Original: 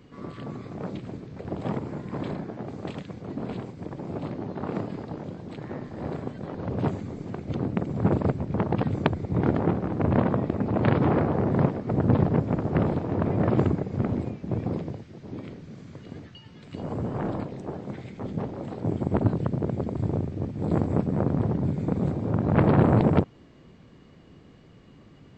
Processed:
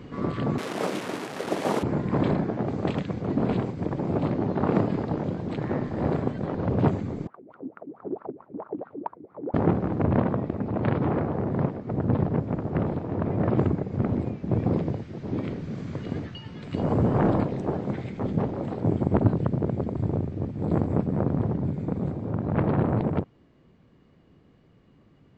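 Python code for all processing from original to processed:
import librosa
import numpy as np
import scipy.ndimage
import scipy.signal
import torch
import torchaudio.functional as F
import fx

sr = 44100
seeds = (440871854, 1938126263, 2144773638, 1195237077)

y = fx.chain(x, sr, fx.delta_mod(bps=64000, step_db=-33.5),
    fx.highpass(hz=330.0, slope=12), at=(0.58, 1.83))
y = fx.chain(y, sr, fx.low_shelf(hz=130.0, db=-5.0),
    fx.wah_lfo(hz=4.5, low_hz=270.0, high_hz=1400.0, q=9.3), at=(7.27, 9.54))
y = fx.high_shelf(y, sr, hz=3600.0, db=-8.0)
y = fx.rider(y, sr, range_db=10, speed_s=2.0)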